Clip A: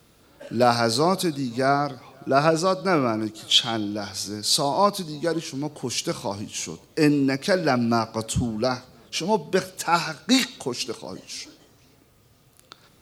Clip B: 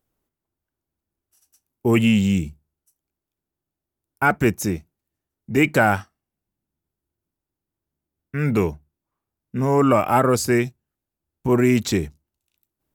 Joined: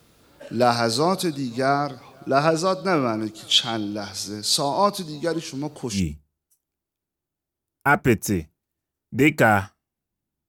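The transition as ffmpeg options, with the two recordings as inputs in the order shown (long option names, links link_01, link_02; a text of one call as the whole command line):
ffmpeg -i cue0.wav -i cue1.wav -filter_complex "[0:a]apad=whole_dur=10.48,atrim=end=10.48,atrim=end=6.03,asetpts=PTS-STARTPTS[link_01];[1:a]atrim=start=2.27:end=6.84,asetpts=PTS-STARTPTS[link_02];[link_01][link_02]acrossfade=duration=0.12:curve1=tri:curve2=tri" out.wav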